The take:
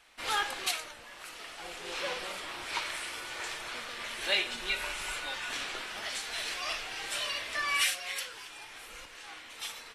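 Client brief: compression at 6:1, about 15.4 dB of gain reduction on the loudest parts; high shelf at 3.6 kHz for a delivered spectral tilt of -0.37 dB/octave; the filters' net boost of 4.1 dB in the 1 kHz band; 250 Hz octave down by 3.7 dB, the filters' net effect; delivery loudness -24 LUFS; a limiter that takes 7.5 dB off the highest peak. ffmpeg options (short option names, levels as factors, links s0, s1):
-af "equalizer=f=250:t=o:g=-6.5,equalizer=f=1000:t=o:g=4.5,highshelf=f=3600:g=9,acompressor=threshold=0.0141:ratio=6,volume=6.31,alimiter=limit=0.158:level=0:latency=1"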